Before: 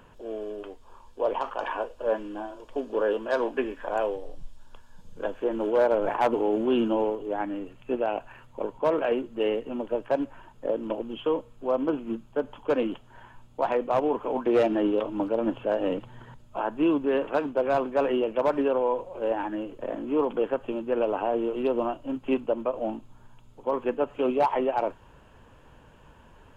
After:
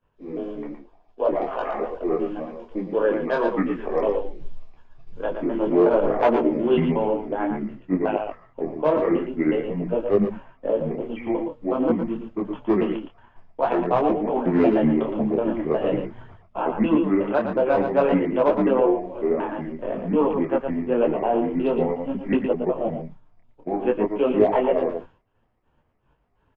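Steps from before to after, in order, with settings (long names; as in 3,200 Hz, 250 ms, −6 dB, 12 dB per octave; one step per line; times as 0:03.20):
pitch shifter gated in a rhythm −5.5 semitones, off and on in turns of 183 ms
downward expander −40 dBFS
high-frequency loss of the air 160 metres
single-tap delay 115 ms −7 dB
micro pitch shift up and down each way 17 cents
level +8.5 dB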